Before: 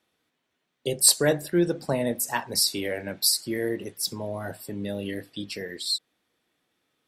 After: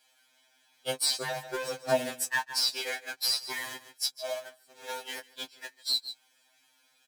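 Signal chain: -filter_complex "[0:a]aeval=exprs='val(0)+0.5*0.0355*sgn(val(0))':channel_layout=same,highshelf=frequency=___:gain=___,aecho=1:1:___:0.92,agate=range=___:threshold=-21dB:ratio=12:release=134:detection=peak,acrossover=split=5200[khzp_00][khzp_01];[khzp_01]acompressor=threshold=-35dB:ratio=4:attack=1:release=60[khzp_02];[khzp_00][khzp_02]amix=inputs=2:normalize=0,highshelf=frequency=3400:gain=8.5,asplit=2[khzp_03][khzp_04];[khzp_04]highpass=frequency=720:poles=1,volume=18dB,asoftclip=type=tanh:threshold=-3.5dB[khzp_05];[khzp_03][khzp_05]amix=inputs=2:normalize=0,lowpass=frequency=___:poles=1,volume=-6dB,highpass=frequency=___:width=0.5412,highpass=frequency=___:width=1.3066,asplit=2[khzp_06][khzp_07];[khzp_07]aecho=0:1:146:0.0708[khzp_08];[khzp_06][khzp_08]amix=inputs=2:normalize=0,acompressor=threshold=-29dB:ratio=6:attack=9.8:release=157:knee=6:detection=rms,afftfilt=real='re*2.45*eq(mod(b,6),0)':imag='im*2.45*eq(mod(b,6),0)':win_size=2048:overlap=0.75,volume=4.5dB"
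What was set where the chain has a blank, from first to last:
11000, -4, 6.5, -50dB, 6300, 160, 160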